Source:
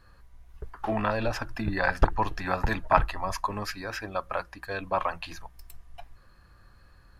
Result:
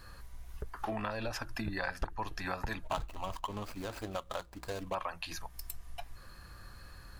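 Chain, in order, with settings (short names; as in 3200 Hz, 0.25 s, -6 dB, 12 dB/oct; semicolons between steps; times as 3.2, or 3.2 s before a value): 2.84–4.95 median filter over 25 samples; high shelf 3700 Hz +9 dB; compressor 3:1, threshold -43 dBFS, peak gain reduction 21.5 dB; gain +4.5 dB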